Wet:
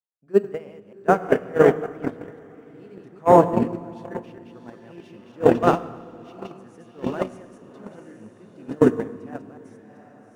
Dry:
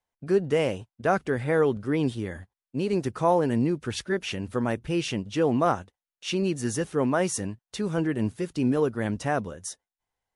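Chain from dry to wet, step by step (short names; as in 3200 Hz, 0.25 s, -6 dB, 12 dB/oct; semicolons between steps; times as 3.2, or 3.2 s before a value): reverse delay 0.133 s, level -2.5 dB; HPF 140 Hz 12 dB/oct; diffused feedback echo 0.721 s, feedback 41%, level -3 dB; in parallel at -9.5 dB: sample-rate reducer 7600 Hz, jitter 0%; on the sum: high shelf 4100 Hz -11 dB; gate -14 dBFS, range -40 dB; on a send at -15 dB: reverb RT60 1.7 s, pre-delay 7 ms; on the sum: maximiser +19 dB; gain -1 dB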